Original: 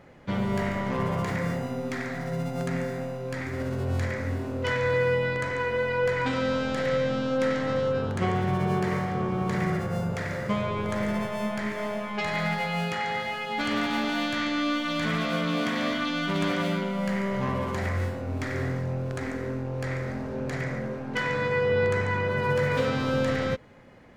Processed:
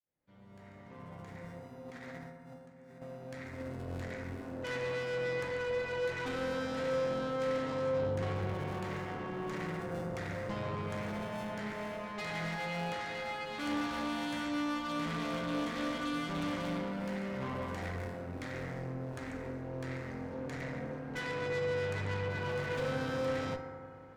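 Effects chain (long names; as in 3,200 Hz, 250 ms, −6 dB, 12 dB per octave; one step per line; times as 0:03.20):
fade in at the beginning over 5.02 s
0:01.86–0:03.02: compressor whose output falls as the input rises −41 dBFS, ratio −0.5
0:08.54–0:10.12: high-pass filter 160 Hz 12 dB per octave
tube saturation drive 29 dB, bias 0.7
convolution reverb RT60 2.6 s, pre-delay 3 ms, DRR 5 dB
level −5.5 dB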